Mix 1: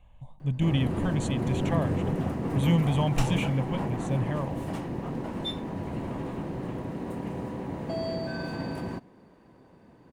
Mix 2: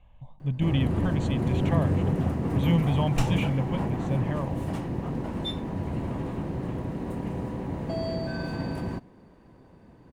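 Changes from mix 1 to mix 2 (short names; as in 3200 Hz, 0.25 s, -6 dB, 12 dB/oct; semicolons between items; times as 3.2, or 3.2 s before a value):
speech: add LPF 4600 Hz 12 dB/oct; background: add low shelf 93 Hz +12 dB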